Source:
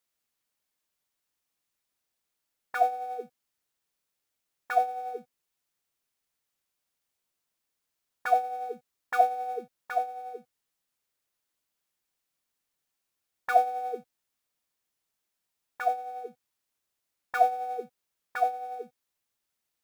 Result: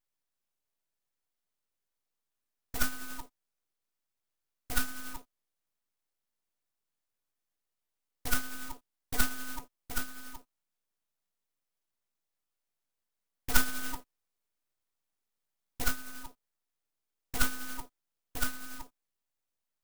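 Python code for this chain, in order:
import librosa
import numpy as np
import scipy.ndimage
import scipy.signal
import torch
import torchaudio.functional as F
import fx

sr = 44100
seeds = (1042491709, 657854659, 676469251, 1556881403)

y = fx.peak_eq(x, sr, hz=1400.0, db=5.5, octaves=2.0, at=(13.54, 15.91))
y = np.abs(y)
y = fx.clock_jitter(y, sr, seeds[0], jitter_ms=0.11)
y = F.gain(torch.from_numpy(y), -2.5).numpy()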